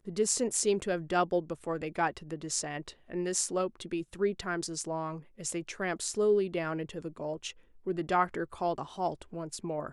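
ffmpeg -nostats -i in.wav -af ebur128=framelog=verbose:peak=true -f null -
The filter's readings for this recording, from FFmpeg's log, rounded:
Integrated loudness:
  I:         -32.6 LUFS
  Threshold: -42.6 LUFS
Loudness range:
  LRA:         2.5 LU
  Threshold: -53.0 LUFS
  LRA low:   -34.3 LUFS
  LRA high:  -31.8 LUFS
True peak:
  Peak:      -11.2 dBFS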